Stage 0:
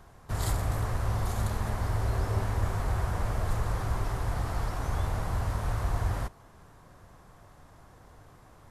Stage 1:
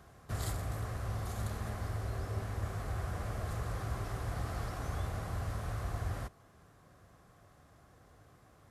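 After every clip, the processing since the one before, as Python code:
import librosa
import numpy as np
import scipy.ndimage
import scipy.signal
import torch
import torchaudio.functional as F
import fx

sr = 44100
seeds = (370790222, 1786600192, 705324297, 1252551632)

y = scipy.signal.sosfilt(scipy.signal.butter(2, 54.0, 'highpass', fs=sr, output='sos'), x)
y = fx.notch(y, sr, hz=920.0, q=5.9)
y = fx.rider(y, sr, range_db=10, speed_s=0.5)
y = y * librosa.db_to_amplitude(-6.0)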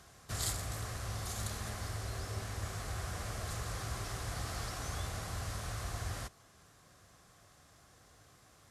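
y = fx.peak_eq(x, sr, hz=6300.0, db=13.5, octaves=2.9)
y = y * librosa.db_to_amplitude(-3.5)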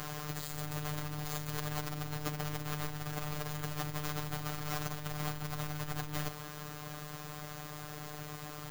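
y = fx.halfwave_hold(x, sr)
y = fx.over_compress(y, sr, threshold_db=-42.0, ratio=-1.0)
y = fx.robotise(y, sr, hz=150.0)
y = y * librosa.db_to_amplitude(7.5)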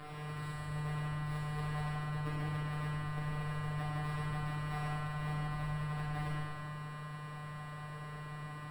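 y = scipy.signal.lfilter(np.full(7, 1.0 / 7), 1.0, x)
y = y + 10.0 ** (-6.5 / 20.0) * np.pad(y, (int(98 * sr / 1000.0), 0))[:len(y)]
y = fx.rev_plate(y, sr, seeds[0], rt60_s=1.7, hf_ratio=0.9, predelay_ms=0, drr_db=-6.5)
y = y * librosa.db_to_amplitude(-8.0)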